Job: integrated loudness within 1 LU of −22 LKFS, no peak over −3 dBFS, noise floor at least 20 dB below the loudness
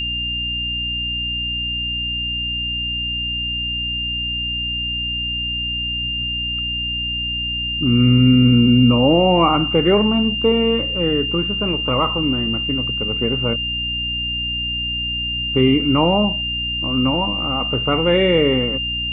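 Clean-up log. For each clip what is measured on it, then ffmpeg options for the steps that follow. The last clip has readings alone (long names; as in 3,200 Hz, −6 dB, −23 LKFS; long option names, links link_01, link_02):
mains hum 60 Hz; hum harmonics up to 300 Hz; level of the hum −28 dBFS; interfering tone 2,800 Hz; level of the tone −21 dBFS; integrated loudness −18.0 LKFS; sample peak −2.5 dBFS; target loudness −22.0 LKFS
→ -af "bandreject=frequency=60:width_type=h:width=4,bandreject=frequency=120:width_type=h:width=4,bandreject=frequency=180:width_type=h:width=4,bandreject=frequency=240:width_type=h:width=4,bandreject=frequency=300:width_type=h:width=4"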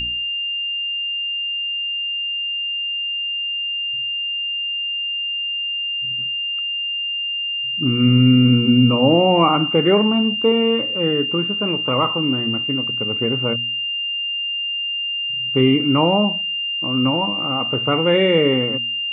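mains hum none found; interfering tone 2,800 Hz; level of the tone −21 dBFS
→ -af "bandreject=frequency=2800:width=30"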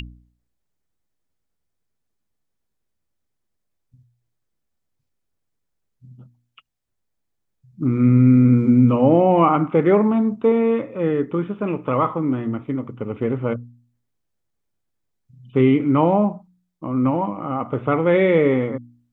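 interfering tone none found; integrated loudness −18.5 LKFS; sample peak −3.5 dBFS; target loudness −22.0 LKFS
→ -af "volume=-3.5dB"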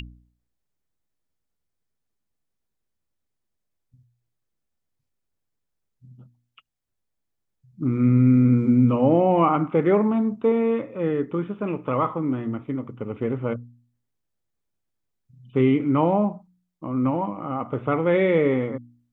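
integrated loudness −22.0 LKFS; sample peak −7.0 dBFS; background noise floor −79 dBFS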